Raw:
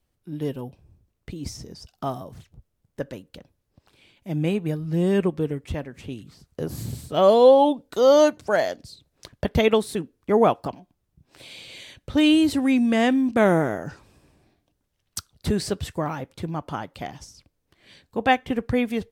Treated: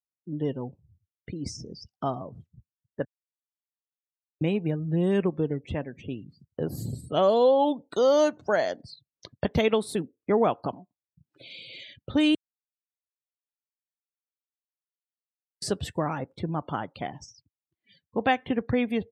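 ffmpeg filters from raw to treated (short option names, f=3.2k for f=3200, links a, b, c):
-filter_complex "[0:a]asplit=5[a][b][c][d][e];[a]atrim=end=3.05,asetpts=PTS-STARTPTS,afade=t=out:st=3.046:d=0.004:c=hsin[f];[b]atrim=start=3.05:end=4.41,asetpts=PTS-STARTPTS,volume=0[g];[c]atrim=start=4.41:end=12.35,asetpts=PTS-STARTPTS,afade=t=in:d=0.004:c=hsin,afade=t=out:st=7.936:d=0.004:c=hsin[h];[d]atrim=start=12.35:end=15.62,asetpts=PTS-STARTPTS,volume=0[i];[e]atrim=start=15.62,asetpts=PTS-STARTPTS,afade=t=in:d=0.004:c=hsin[j];[f][g][h][i][j]concat=n=5:v=0:a=1,highpass=93,afftdn=nr=34:nf=-45,acompressor=threshold=-22dB:ratio=2"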